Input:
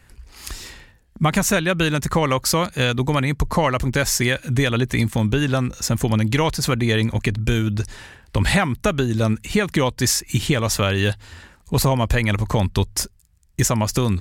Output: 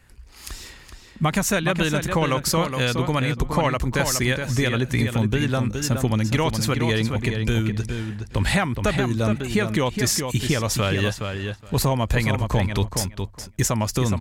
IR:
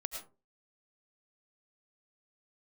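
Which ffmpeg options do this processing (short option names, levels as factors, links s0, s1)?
-filter_complex "[0:a]asplit=2[s0][s1];[s1]adelay=418,lowpass=f=4000:p=1,volume=0.501,asplit=2[s2][s3];[s3]adelay=418,lowpass=f=4000:p=1,volume=0.15,asplit=2[s4][s5];[s5]adelay=418,lowpass=f=4000:p=1,volume=0.15[s6];[s0][s2][s4][s6]amix=inputs=4:normalize=0,volume=0.708"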